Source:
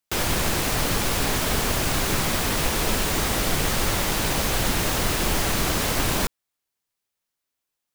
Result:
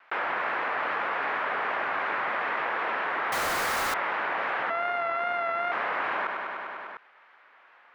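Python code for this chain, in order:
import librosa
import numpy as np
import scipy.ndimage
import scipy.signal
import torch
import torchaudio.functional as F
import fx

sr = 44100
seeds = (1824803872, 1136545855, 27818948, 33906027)

p1 = fx.sample_sort(x, sr, block=64, at=(4.7, 5.72))
p2 = scipy.signal.sosfilt(scipy.signal.butter(4, 1900.0, 'lowpass', fs=sr, output='sos'), p1)
p3 = fx.vibrato(p2, sr, rate_hz=2.5, depth_cents=40.0)
p4 = scipy.signal.sosfilt(scipy.signal.butter(2, 900.0, 'highpass', fs=sr, output='sos'), p3)
p5 = p4 + fx.echo_feedback(p4, sr, ms=100, feedback_pct=59, wet_db=-12.5, dry=0)
p6 = fx.quant_companded(p5, sr, bits=2, at=(3.32, 3.94))
p7 = fx.env_flatten(p6, sr, amount_pct=70)
y = p7 * 10.0 ** (-1.0 / 20.0)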